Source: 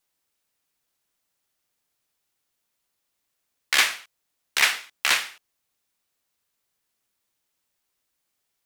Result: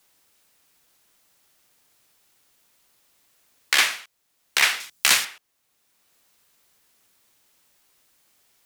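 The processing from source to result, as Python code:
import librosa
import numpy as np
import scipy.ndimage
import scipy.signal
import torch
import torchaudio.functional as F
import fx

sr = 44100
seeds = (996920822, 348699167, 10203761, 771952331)

y = fx.bass_treble(x, sr, bass_db=9, treble_db=9, at=(4.8, 5.25))
y = 10.0 ** (-4.5 / 20.0) * np.tanh(y / 10.0 ** (-4.5 / 20.0))
y = fx.band_squash(y, sr, depth_pct=40)
y = F.gain(torch.from_numpy(y), 2.0).numpy()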